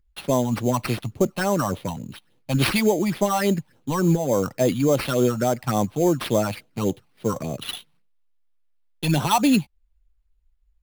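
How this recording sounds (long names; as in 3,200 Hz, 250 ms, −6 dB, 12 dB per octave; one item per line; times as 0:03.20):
phaser sweep stages 6, 3.5 Hz, lowest notch 400–2,200 Hz
aliases and images of a low sample rate 6,900 Hz, jitter 0%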